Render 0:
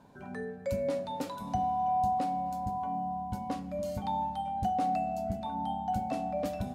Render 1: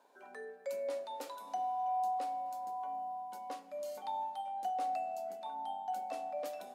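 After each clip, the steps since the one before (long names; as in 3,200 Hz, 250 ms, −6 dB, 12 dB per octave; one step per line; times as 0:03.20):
high-pass filter 390 Hz 24 dB per octave
high-shelf EQ 7,800 Hz +5 dB
level −5.5 dB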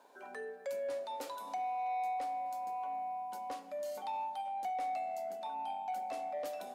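in parallel at −2.5 dB: downward compressor, threshold −46 dBFS, peak gain reduction 13 dB
on the sum: soft clipping −32 dBFS, distortion −17 dB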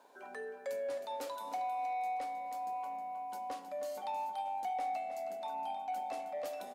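repeating echo 315 ms, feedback 25%, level −10 dB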